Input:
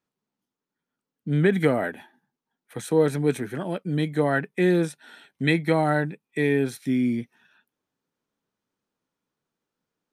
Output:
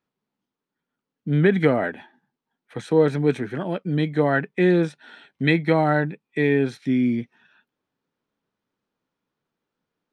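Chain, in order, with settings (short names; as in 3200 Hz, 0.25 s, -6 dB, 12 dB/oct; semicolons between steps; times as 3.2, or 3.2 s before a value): LPF 4400 Hz 12 dB/oct; gain +2.5 dB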